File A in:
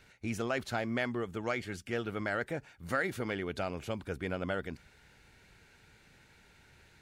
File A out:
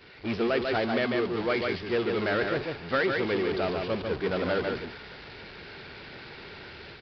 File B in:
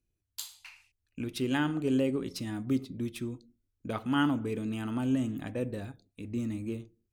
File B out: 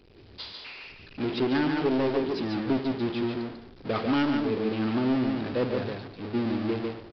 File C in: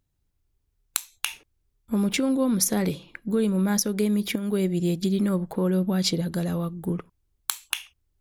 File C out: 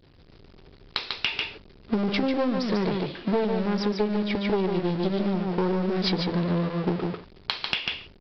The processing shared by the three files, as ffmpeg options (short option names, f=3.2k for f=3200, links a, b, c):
-af "aeval=exprs='val(0)+0.5*0.0501*sgn(val(0))':c=same,agate=range=-33dB:threshold=-18dB:ratio=3:detection=peak,dynaudnorm=f=150:g=3:m=6.5dB,equalizer=f=400:w=2.4:g=7,aresample=11025,aeval=exprs='clip(val(0),-1,0.0631)':c=same,aresample=44100,aecho=1:1:145:0.562,acompressor=threshold=-31dB:ratio=4,lowshelf=f=82:g=-9.5,volume=8dB"